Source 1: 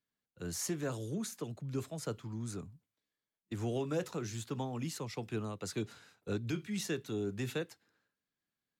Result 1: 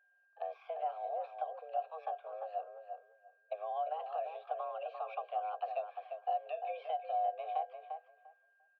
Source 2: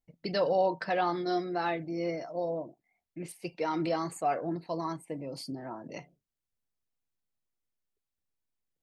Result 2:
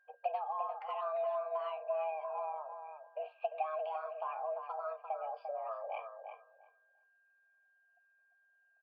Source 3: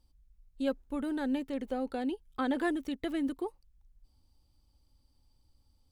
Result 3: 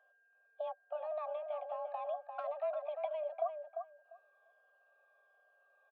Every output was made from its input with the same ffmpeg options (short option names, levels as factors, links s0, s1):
-filter_complex "[0:a]afftfilt=real='re*pow(10,10/40*sin(2*PI*(1.5*log(max(b,1)*sr/1024/100)/log(2)-(-1.3)*(pts-256)/sr)))':imag='im*pow(10,10/40*sin(2*PI*(1.5*log(max(b,1)*sr/1024/100)/log(2)-(-1.3)*(pts-256)/sr)))':win_size=1024:overlap=0.75,acompressor=threshold=0.00708:ratio=5,highpass=f=170:t=q:w=0.5412,highpass=f=170:t=q:w=1.307,lowpass=f=3300:t=q:w=0.5176,lowpass=f=3300:t=q:w=0.7071,lowpass=f=3300:t=q:w=1.932,afreqshift=310,aeval=exprs='val(0)+0.000708*sin(2*PI*1600*n/s)':c=same,asoftclip=type=hard:threshold=0.0188,asplit=3[s0][s1][s2];[s0]bandpass=f=730:t=q:w=8,volume=1[s3];[s1]bandpass=f=1090:t=q:w=8,volume=0.501[s4];[s2]bandpass=f=2440:t=q:w=8,volume=0.355[s5];[s3][s4][s5]amix=inputs=3:normalize=0,asplit=2[s6][s7];[s7]adelay=347,lowpass=f=2000:p=1,volume=0.501,asplit=2[s8][s9];[s9]adelay=347,lowpass=f=2000:p=1,volume=0.17,asplit=2[s10][s11];[s11]adelay=347,lowpass=f=2000:p=1,volume=0.17[s12];[s8][s10][s12]amix=inputs=3:normalize=0[s13];[s6][s13]amix=inputs=2:normalize=0,volume=4.73"